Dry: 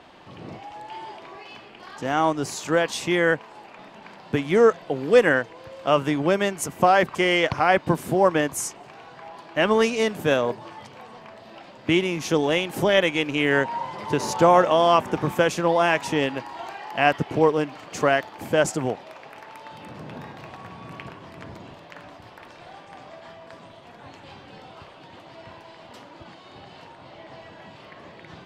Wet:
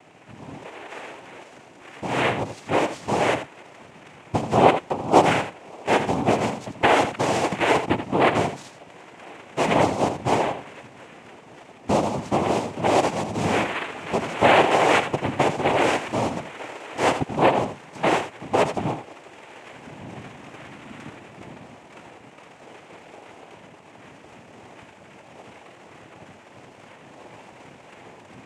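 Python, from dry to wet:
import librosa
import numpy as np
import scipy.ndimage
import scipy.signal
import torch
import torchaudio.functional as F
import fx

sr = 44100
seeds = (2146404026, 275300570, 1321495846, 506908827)

p1 = scipy.signal.medfilt(x, 15)
p2 = fx.noise_vocoder(p1, sr, seeds[0], bands=4)
y = p2 + fx.echo_single(p2, sr, ms=82, db=-10.0, dry=0)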